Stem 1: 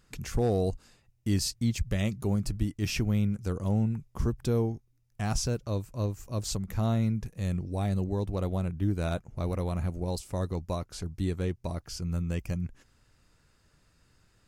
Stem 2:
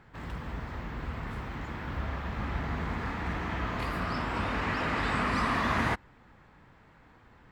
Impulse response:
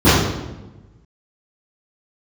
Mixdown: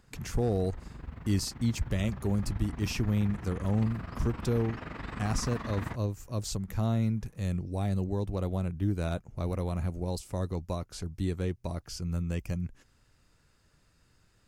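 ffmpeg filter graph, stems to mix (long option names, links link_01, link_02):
-filter_complex "[0:a]acrossover=split=430[link_01][link_02];[link_02]acompressor=threshold=-34dB:ratio=2[link_03];[link_01][link_03]amix=inputs=2:normalize=0,volume=-1dB[link_04];[1:a]lowshelf=frequency=340:gain=8.5,tremolo=f=23:d=0.75,volume=-10.5dB[link_05];[link_04][link_05]amix=inputs=2:normalize=0"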